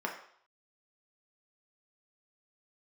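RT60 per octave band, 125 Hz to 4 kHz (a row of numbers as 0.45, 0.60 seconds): 0.35, 0.50, 0.55, 0.60, 0.55, 0.60 seconds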